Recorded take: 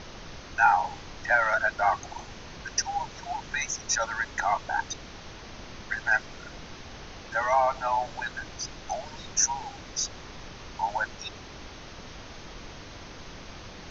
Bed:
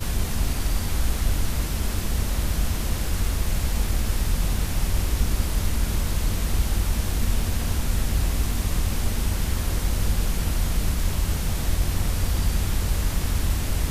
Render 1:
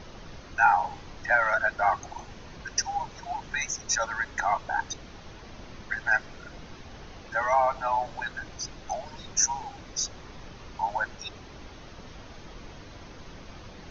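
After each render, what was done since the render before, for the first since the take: denoiser 6 dB, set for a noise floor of -45 dBFS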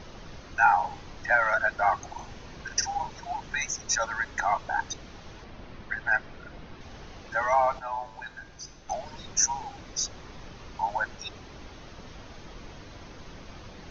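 2.16–3.15 doubler 44 ms -8 dB; 5.44–6.81 air absorption 140 m; 7.79–8.89 resonator 52 Hz, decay 0.7 s, harmonics odd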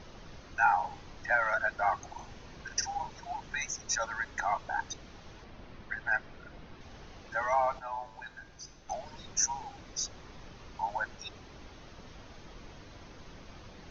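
gain -5 dB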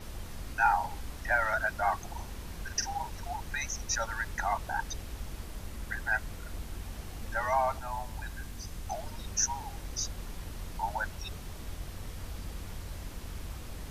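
add bed -18 dB

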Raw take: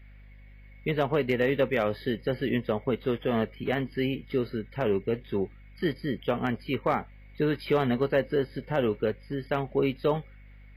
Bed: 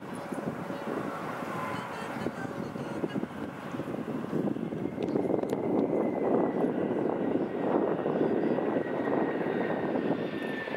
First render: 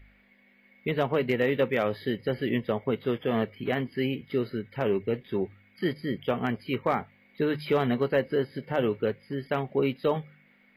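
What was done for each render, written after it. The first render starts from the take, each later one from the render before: de-hum 50 Hz, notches 3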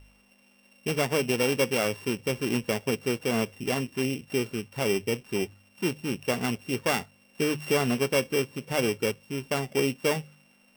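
sample sorter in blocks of 16 samples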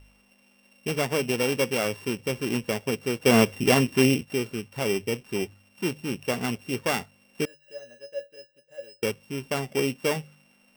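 3.26–4.23 gain +8.5 dB; 7.45–9.03 resonator 570 Hz, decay 0.18 s, harmonics odd, mix 100%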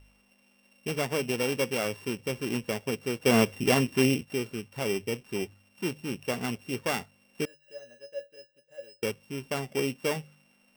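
gain -3.5 dB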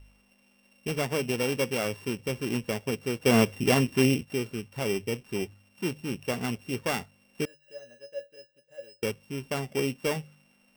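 low shelf 130 Hz +5.5 dB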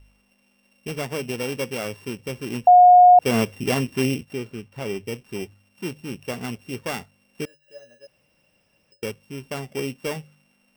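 2.67–3.19 bleep 720 Hz -7 dBFS; 4.33–5.05 bell 13000 Hz -6 dB 2.2 oct; 8.07–8.92 room tone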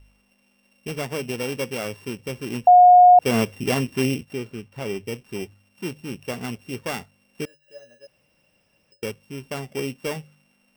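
nothing audible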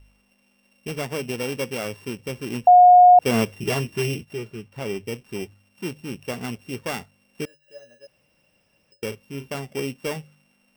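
3.54–4.65 notch comb 260 Hz; 9.08–9.56 doubler 36 ms -9 dB

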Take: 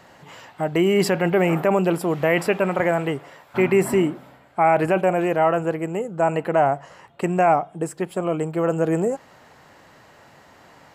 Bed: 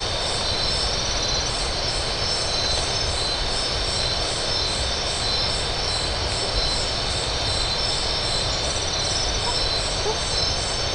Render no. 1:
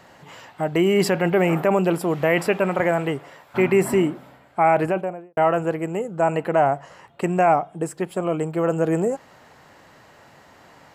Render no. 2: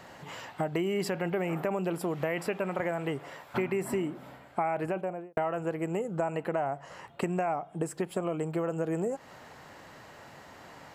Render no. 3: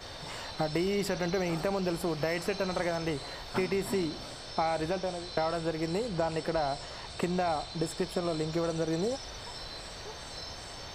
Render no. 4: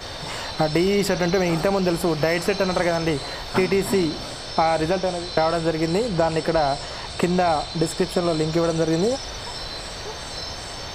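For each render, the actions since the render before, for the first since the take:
4.7–5.37 studio fade out
compressor 6:1, threshold -28 dBFS, peak gain reduction 14.5 dB
add bed -20 dB
gain +10 dB

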